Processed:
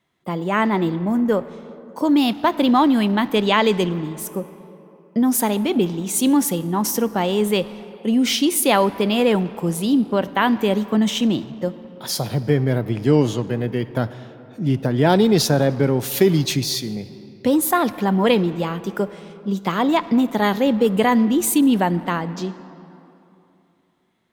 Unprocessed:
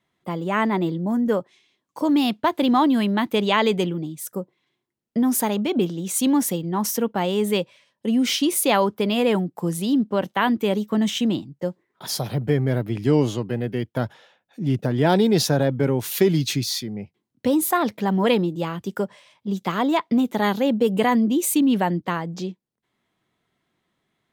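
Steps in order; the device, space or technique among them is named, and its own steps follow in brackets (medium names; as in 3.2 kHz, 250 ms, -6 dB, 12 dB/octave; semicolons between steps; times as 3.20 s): saturated reverb return (on a send at -11.5 dB: reverberation RT60 2.8 s, pre-delay 10 ms + saturation -21.5 dBFS, distortion -10 dB); on the sum: trim +2.5 dB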